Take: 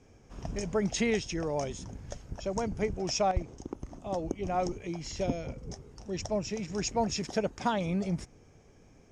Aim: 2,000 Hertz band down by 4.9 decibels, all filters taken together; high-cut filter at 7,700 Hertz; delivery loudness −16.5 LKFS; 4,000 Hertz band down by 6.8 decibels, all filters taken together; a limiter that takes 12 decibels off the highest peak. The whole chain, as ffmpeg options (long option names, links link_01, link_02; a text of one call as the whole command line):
ffmpeg -i in.wav -af "lowpass=7700,equalizer=frequency=2000:width_type=o:gain=-3.5,equalizer=frequency=4000:width_type=o:gain=-9,volume=22.5dB,alimiter=limit=-6.5dB:level=0:latency=1" out.wav